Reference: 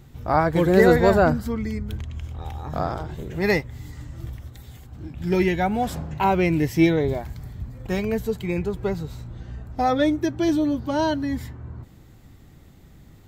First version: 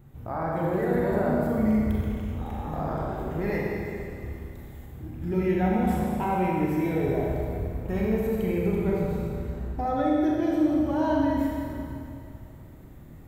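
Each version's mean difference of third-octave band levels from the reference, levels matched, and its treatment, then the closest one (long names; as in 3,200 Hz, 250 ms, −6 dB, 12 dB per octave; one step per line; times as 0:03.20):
7.5 dB: parametric band 4,900 Hz −13.5 dB 1.8 octaves
speech leveller within 4 dB 0.5 s
brickwall limiter −16.5 dBFS, peak gain reduction 8.5 dB
four-comb reverb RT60 2.5 s, combs from 29 ms, DRR −4 dB
level −5.5 dB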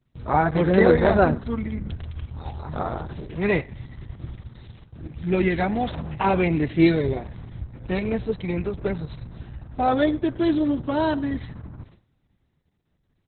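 5.5 dB: noise gate with hold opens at −34 dBFS
dynamic equaliser 8,400 Hz, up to −3 dB, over −53 dBFS, Q 1.5
repeating echo 101 ms, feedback 27%, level −22 dB
Opus 6 kbit/s 48,000 Hz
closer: second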